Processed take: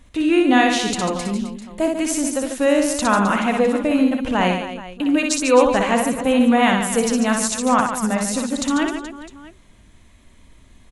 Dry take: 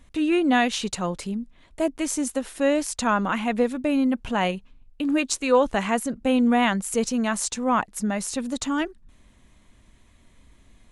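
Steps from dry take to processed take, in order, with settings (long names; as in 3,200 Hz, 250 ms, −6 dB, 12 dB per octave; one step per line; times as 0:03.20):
reverse bouncing-ball delay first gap 60 ms, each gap 1.4×, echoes 5
level +3.5 dB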